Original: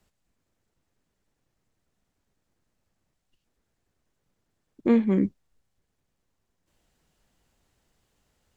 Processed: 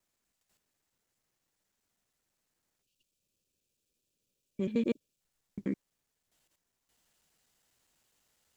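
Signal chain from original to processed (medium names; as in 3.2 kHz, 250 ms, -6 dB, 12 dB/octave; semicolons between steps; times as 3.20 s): slices played last to first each 82 ms, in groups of 7; tilt EQ +2.5 dB/octave; time-frequency box 2.81–5.21 s, 620–2300 Hz -13 dB; trim -4.5 dB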